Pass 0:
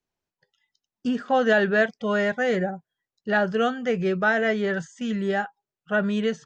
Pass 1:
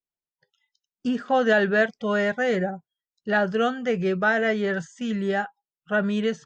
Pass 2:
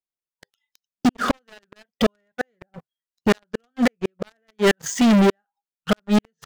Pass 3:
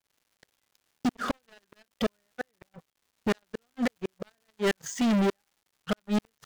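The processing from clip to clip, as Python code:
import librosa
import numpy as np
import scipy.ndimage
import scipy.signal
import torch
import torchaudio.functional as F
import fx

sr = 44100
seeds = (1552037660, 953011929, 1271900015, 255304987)

y1 = fx.noise_reduce_blind(x, sr, reduce_db=15)
y2 = fx.gate_flip(y1, sr, shuts_db=-17.0, range_db=-41)
y2 = fx.leveller(y2, sr, passes=5)
y2 = y2 * 10.0 ** (5.0 / 20.0)
y3 = fx.dmg_crackle(y2, sr, seeds[0], per_s=270.0, level_db=-48.0)
y3 = y3 * 10.0 ** (-9.0 / 20.0)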